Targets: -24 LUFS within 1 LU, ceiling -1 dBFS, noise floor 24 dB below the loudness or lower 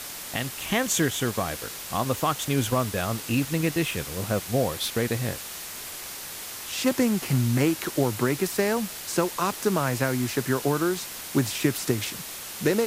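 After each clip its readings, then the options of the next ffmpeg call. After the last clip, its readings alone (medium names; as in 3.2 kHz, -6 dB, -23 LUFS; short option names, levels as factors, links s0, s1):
noise floor -38 dBFS; noise floor target -51 dBFS; loudness -26.5 LUFS; peak level -9.0 dBFS; loudness target -24.0 LUFS
-> -af "afftdn=nr=13:nf=-38"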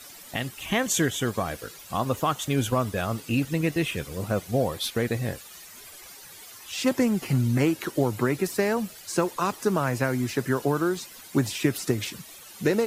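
noise floor -46 dBFS; noise floor target -51 dBFS
-> -af "afftdn=nr=6:nf=-46"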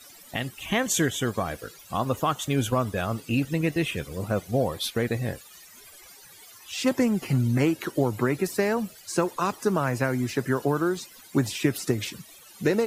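noise floor -50 dBFS; noise floor target -51 dBFS
-> -af "afftdn=nr=6:nf=-50"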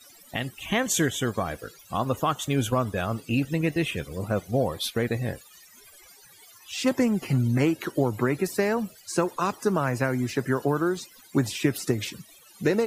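noise floor -53 dBFS; loudness -27.0 LUFS; peak level -9.5 dBFS; loudness target -24.0 LUFS
-> -af "volume=1.41"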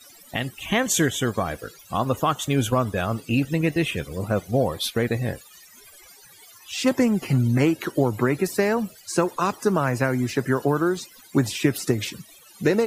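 loudness -24.0 LUFS; peak level -6.5 dBFS; noise floor -50 dBFS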